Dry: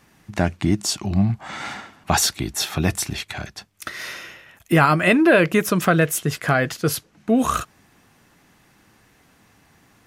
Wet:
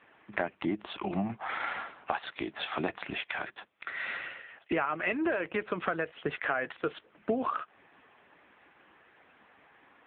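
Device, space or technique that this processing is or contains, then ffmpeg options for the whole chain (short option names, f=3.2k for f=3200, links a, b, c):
voicemail: -af "highpass=390,lowpass=3k,acompressor=threshold=-29dB:ratio=10,volume=3dB" -ar 8000 -c:a libopencore_amrnb -b:a 6700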